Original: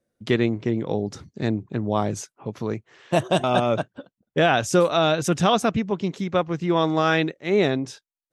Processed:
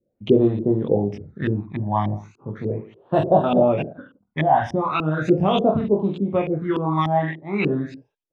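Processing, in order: reverse bouncing-ball echo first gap 20 ms, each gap 1.25×, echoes 5; LFO low-pass saw up 3.4 Hz 350–2800 Hz; phaser stages 12, 0.38 Hz, lowest notch 430–2200 Hz

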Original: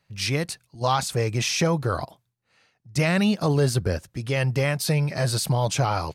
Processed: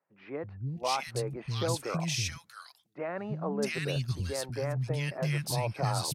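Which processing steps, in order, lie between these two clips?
2.03–3.63 low shelf 230 Hz -7 dB; three bands offset in time mids, lows, highs 0.33/0.67 s, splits 240/1600 Hz; gain -7 dB

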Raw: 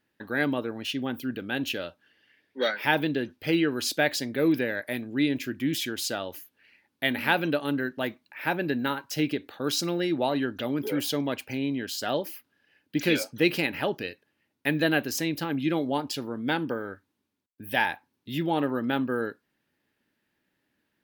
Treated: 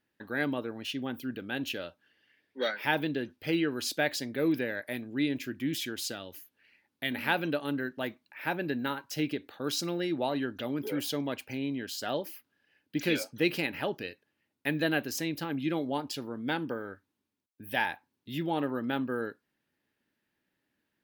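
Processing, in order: 6.11–7.12 dynamic EQ 810 Hz, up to -8 dB, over -43 dBFS, Q 0.71; gain -4.5 dB

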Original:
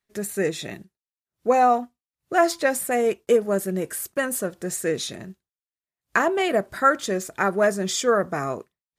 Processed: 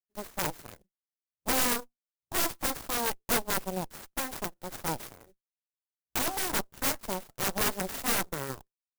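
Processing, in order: added harmonics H 6 -16 dB, 7 -16 dB, 8 -11 dB, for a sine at -6 dBFS; wrapped overs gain 13 dB; clock jitter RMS 0.091 ms; gain -6 dB

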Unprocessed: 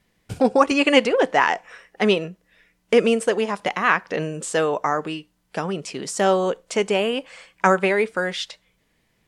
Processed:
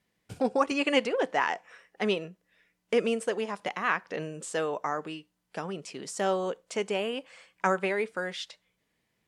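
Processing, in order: HPF 100 Hz 6 dB/oct; gain -9 dB

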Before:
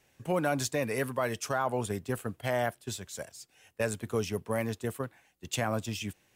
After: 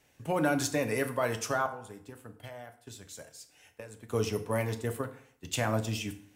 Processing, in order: 1.66–4.09 compressor 12:1, threshold -43 dBFS, peak gain reduction 18.5 dB; FDN reverb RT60 0.59 s, low-frequency decay 1×, high-frequency decay 0.75×, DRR 6.5 dB

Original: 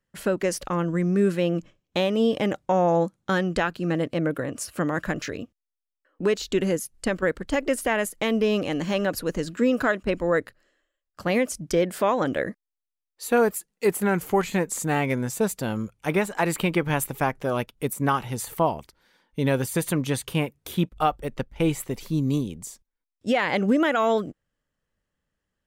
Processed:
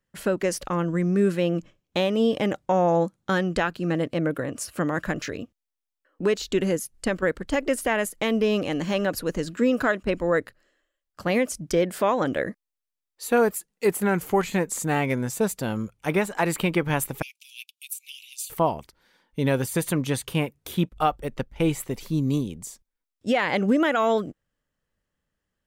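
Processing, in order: 17.22–18.5 steep high-pass 2400 Hz 96 dB/oct

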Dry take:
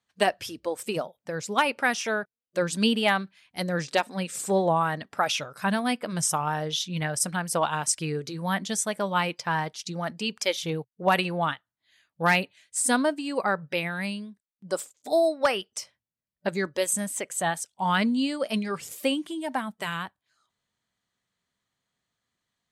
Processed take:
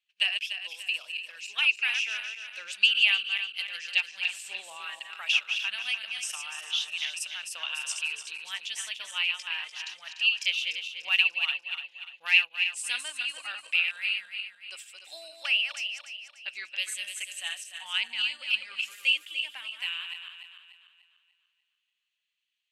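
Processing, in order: regenerating reverse delay 0.147 s, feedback 64%, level -6 dB; band-pass 2700 Hz, Q 8.7; tilt +4.5 dB/oct; gain +5 dB

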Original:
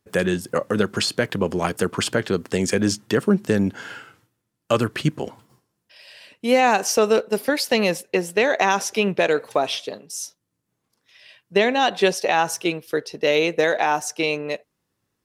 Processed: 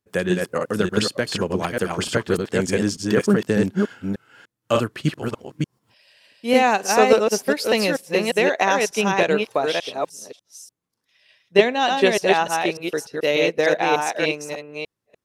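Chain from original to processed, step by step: reverse delay 0.297 s, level -2 dB; upward expander 1.5:1, over -34 dBFS; gain +2 dB

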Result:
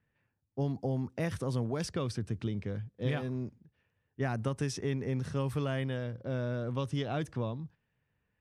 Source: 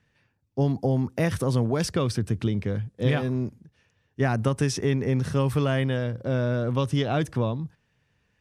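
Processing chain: low-pass opened by the level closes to 2300 Hz, open at -20 dBFS; gain -9 dB

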